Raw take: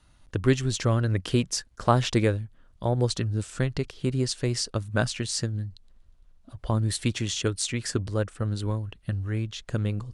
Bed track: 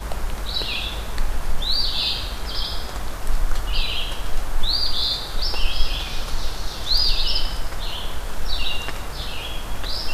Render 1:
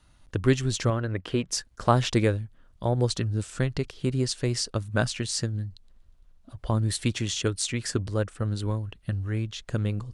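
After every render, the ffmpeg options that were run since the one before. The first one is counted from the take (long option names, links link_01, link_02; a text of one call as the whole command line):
ffmpeg -i in.wav -filter_complex "[0:a]asettb=1/sr,asplit=3[link_01][link_02][link_03];[link_01]atrim=end=0.904[link_04];[link_02]atrim=start=0.9:end=1.49,asetpts=PTS-STARTPTS,afade=type=in:duration=0.004:curve=qsin,afade=type=out:start_time=0.586:duration=0.004:curve=qsin,bass=frequency=250:gain=-6,treble=frequency=4000:gain=-14[link_05];[link_03]atrim=start=1.486[link_06];[link_04][link_05]acrossfade=duration=0.004:curve1=hsin:curve2=qsin[link_07];[link_07][link_06]acrossfade=duration=0.004:curve1=qsin:curve2=hsin" out.wav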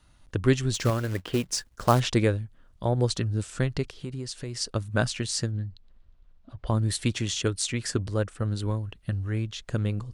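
ffmpeg -i in.wav -filter_complex "[0:a]asettb=1/sr,asplit=3[link_01][link_02][link_03];[link_01]atrim=end=0.744[link_04];[link_02]atrim=start=0.74:end=2,asetpts=PTS-STARTPTS,afade=type=in:duration=0.004:curve=qsin,afade=type=out:start_time=1.256:duration=0.004:curve=qsin,acrusher=bits=4:mode=log:mix=0:aa=0.000001[link_05];[link_03]atrim=start=1.996[link_06];[link_04][link_05]acrossfade=duration=0.004:curve1=hsin:curve2=qsin[link_07];[link_07][link_06]acrossfade=duration=0.004:curve1=qsin:curve2=hsin,asplit=3[link_08][link_09][link_10];[link_08]afade=type=out:start_time=3.86:duration=0.02[link_11];[link_09]acompressor=threshold=-33dB:ratio=3:attack=3.2:release=140:knee=1:detection=peak,afade=type=in:start_time=3.86:duration=0.02,afade=type=out:start_time=4.6:duration=0.02[link_12];[link_10]afade=type=in:start_time=4.6:duration=0.02[link_13];[link_11][link_12][link_13]amix=inputs=3:normalize=0,asettb=1/sr,asplit=3[link_14][link_15][link_16];[link_14]atrim=end=5.514[link_17];[link_15]atrim=start=5.51:end=6.67,asetpts=PTS-STARTPTS,afade=type=in:duration=0.004:curve=qsin,afade=type=out:start_time=1.156:duration=0.004:curve=qsin,lowpass=4200[link_18];[link_16]atrim=start=6.666[link_19];[link_17][link_18]acrossfade=duration=0.004:curve1=hsin:curve2=qsin[link_20];[link_20][link_19]acrossfade=duration=0.004:curve1=qsin:curve2=hsin" out.wav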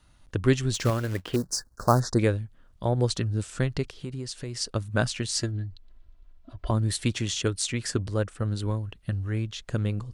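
ffmpeg -i in.wav -filter_complex "[0:a]asettb=1/sr,asplit=3[link_01][link_02][link_03];[link_01]atrim=end=1.364[link_04];[link_02]atrim=start=1.36:end=2.19,asetpts=PTS-STARTPTS,afade=type=in:duration=0.004:curve=qsin,afade=type=out:start_time=0.826:duration=0.004:curve=qsin,asuperstop=centerf=2700:order=8:qfactor=0.98[link_05];[link_03]atrim=start=2.186[link_06];[link_04][link_05]acrossfade=duration=0.004:curve1=hsin:curve2=qsin[link_07];[link_07][link_06]acrossfade=duration=0.004:curve1=qsin:curve2=hsin,asettb=1/sr,asplit=3[link_08][link_09][link_10];[link_08]atrim=end=5.354[link_11];[link_09]atrim=start=5.35:end=6.71,asetpts=PTS-STARTPTS,afade=type=in:duration=0.004:curve=qsin,afade=type=out:start_time=1.356:duration=0.004:curve=qsin,aecho=1:1:3:0.65,atrim=end_sample=59976[link_12];[link_10]atrim=start=6.706[link_13];[link_11][link_12]acrossfade=duration=0.004:curve1=hsin:curve2=qsin[link_14];[link_14][link_13]acrossfade=duration=0.004:curve1=qsin:curve2=hsin" out.wav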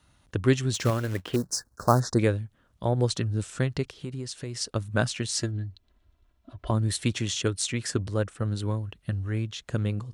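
ffmpeg -i in.wav -af "highpass=60,bandreject=frequency=4700:width=23" out.wav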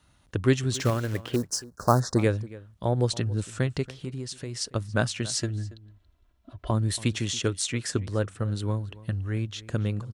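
ffmpeg -i in.wav -filter_complex "[0:a]asplit=2[link_01][link_02];[link_02]adelay=279.9,volume=-19dB,highshelf=frequency=4000:gain=-6.3[link_03];[link_01][link_03]amix=inputs=2:normalize=0" out.wav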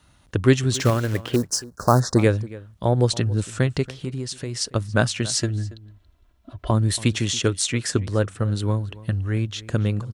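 ffmpeg -i in.wav -af "volume=5.5dB,alimiter=limit=-3dB:level=0:latency=1" out.wav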